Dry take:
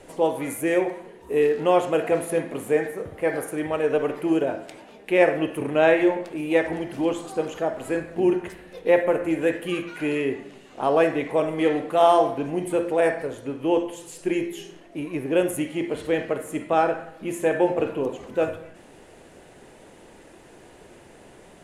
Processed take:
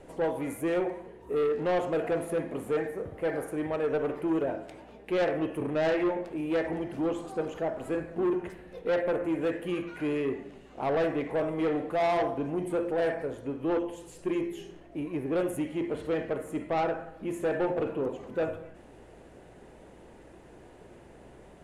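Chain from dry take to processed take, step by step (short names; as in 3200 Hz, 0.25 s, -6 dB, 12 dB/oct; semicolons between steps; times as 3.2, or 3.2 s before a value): high shelf 2000 Hz -9 dB; soft clip -20 dBFS, distortion -10 dB; hum 60 Hz, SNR 30 dB; gain -2.5 dB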